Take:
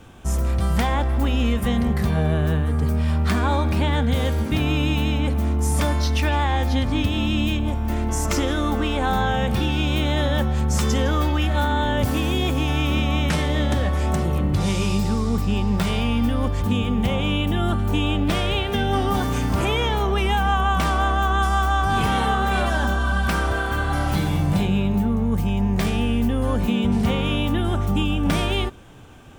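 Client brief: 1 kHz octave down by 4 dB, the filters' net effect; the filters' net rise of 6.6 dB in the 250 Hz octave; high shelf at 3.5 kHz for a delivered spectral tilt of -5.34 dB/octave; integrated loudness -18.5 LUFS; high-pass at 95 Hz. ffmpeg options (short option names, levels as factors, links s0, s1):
-af "highpass=95,equalizer=f=250:t=o:g=8.5,equalizer=f=1000:t=o:g=-6.5,highshelf=f=3500:g=6,volume=1.12"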